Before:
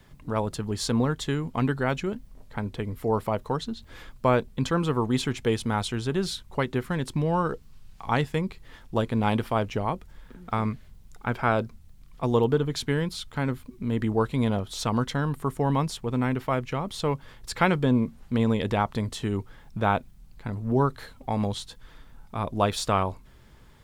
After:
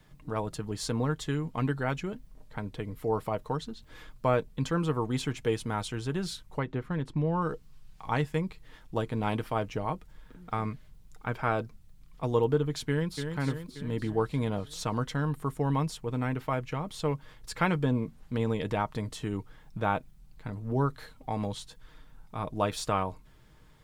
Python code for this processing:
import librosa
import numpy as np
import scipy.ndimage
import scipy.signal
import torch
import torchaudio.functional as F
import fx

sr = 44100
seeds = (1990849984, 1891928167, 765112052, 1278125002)

y = fx.lowpass(x, sr, hz=1700.0, slope=6, at=(6.59, 7.42))
y = fx.echo_throw(y, sr, start_s=12.88, length_s=0.4, ms=290, feedback_pct=60, wet_db=-6.5)
y = fx.dynamic_eq(y, sr, hz=3700.0, q=2.8, threshold_db=-46.0, ratio=4.0, max_db=-3)
y = y + 0.37 * np.pad(y, (int(6.5 * sr / 1000.0), 0))[:len(y)]
y = F.gain(torch.from_numpy(y), -5.0).numpy()